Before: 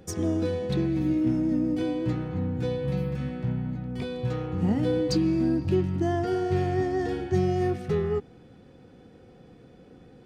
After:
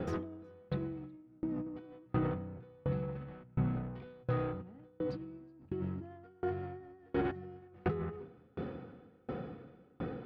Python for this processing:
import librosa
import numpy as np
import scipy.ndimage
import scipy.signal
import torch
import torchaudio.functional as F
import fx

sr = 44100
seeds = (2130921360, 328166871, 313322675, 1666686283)

y = fx.highpass(x, sr, hz=100.0, slope=6)
y = fx.peak_eq(y, sr, hz=1300.0, db=8.0, octaves=0.27)
y = fx.hum_notches(y, sr, base_hz=50, count=8)
y = fx.over_compress(y, sr, threshold_db=-37.0, ratio=-1.0)
y = 10.0 ** (-32.5 / 20.0) * np.tanh(y / 10.0 ** (-32.5 / 20.0))
y = fx.air_absorb(y, sr, metres=400.0)
y = y + 10.0 ** (-13.5 / 20.0) * np.pad(y, (int(369 * sr / 1000.0), 0))[:len(y)]
y = fx.tremolo_decay(y, sr, direction='decaying', hz=1.4, depth_db=33)
y = y * 10.0 ** (9.5 / 20.0)